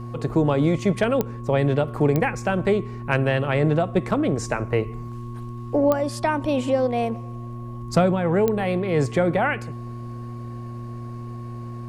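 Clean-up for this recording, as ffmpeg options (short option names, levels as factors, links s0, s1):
-af "adeclick=t=4,bandreject=f=118.2:t=h:w=4,bandreject=f=236.4:t=h:w=4,bandreject=f=354.6:t=h:w=4,bandreject=f=1100:w=30"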